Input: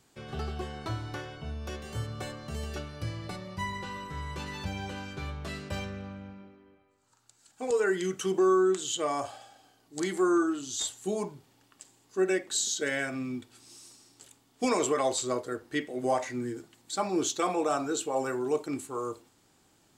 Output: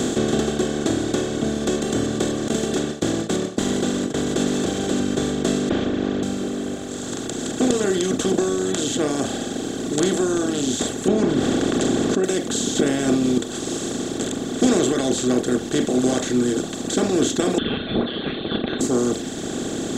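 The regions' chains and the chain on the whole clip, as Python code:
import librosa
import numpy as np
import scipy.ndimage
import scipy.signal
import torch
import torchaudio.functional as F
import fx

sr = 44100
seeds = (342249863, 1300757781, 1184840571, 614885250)

y = fx.chain(x, sr, fx.gate_hold(open_db=-29.0, close_db=-35.0, hold_ms=71.0, range_db=-21, attack_ms=1.4, release_ms=100.0),
    fx.highpass(hz=150.0, slope=12),
    fx.clip_hard(threshold_db=-35.5), at=(2.48, 5.0))
y = fx.chain(y, sr, fx.lower_of_two(delay_ms=3.3),
    fx.cheby2_lowpass(hz=8400.0, order=4, stop_db=60), at=(5.69, 6.23))
y = fx.chain(y, sr, fx.lowpass(hz=1700.0, slope=12),
    fx.env_flatten(amount_pct=70), at=(11.08, 12.24))
y = fx.chain(y, sr, fx.peak_eq(hz=1200.0, db=-8.0, octaves=0.47),
    fx.env_flatten(amount_pct=100), at=(12.75, 13.38))
y = fx.chain(y, sr, fx.tilt_shelf(db=-8.0, hz=780.0),
    fx.freq_invert(carrier_hz=3900), at=(17.58, 18.81))
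y = fx.bin_compress(y, sr, power=0.2)
y = fx.graphic_eq_15(y, sr, hz=(250, 1000, 2500), db=(11, -10, -12))
y = fx.dereverb_blind(y, sr, rt60_s=1.7)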